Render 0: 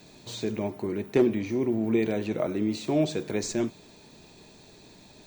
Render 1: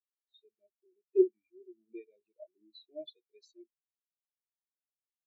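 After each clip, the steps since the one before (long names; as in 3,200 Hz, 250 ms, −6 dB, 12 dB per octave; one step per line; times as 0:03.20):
low-pass that shuts in the quiet parts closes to 2,000 Hz, open at −23.5 dBFS
graphic EQ with 10 bands 125 Hz −9 dB, 250 Hz −11 dB, 1,000 Hz −10 dB, 2,000 Hz +5 dB, 4,000 Hz +12 dB, 8,000 Hz +7 dB, 16,000 Hz −5 dB
every bin expanded away from the loudest bin 4 to 1
level −1.5 dB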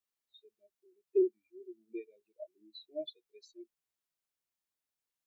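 brickwall limiter −24 dBFS, peak gain reduction 10.5 dB
level +4 dB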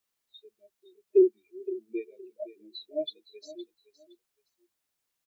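repeating echo 515 ms, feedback 22%, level −15.5 dB
level +8 dB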